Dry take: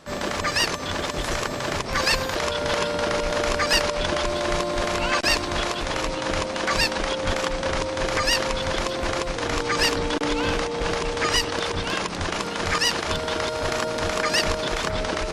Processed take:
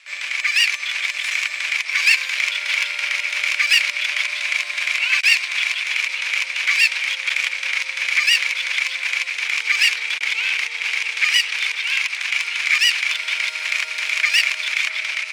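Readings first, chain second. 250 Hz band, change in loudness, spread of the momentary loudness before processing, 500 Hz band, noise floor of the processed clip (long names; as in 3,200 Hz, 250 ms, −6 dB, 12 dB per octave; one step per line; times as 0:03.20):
below −35 dB, +5.5 dB, 5 LU, below −20 dB, −30 dBFS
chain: Butterworth low-pass 11,000 Hz
automatic gain control gain up to 3 dB
asymmetric clip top −24 dBFS
high-pass with resonance 2,300 Hz, resonance Q 7.4
level −1 dB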